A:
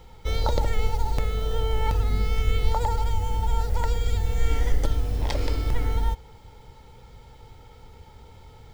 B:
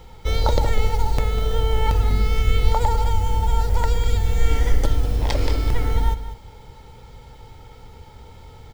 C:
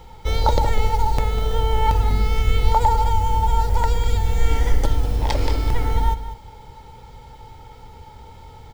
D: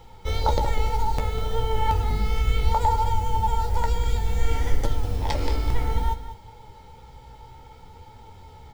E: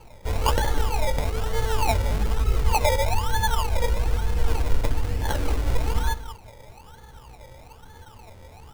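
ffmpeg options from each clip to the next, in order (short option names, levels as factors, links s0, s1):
-af "aecho=1:1:199:0.237,volume=1.68"
-af "equalizer=f=880:t=o:w=0.22:g=7"
-af "flanger=delay=8.1:depth=9.6:regen=44:speed=0.61:shape=triangular"
-af "acrusher=samples=24:mix=1:aa=0.000001:lfo=1:lforange=14.4:lforate=1.1"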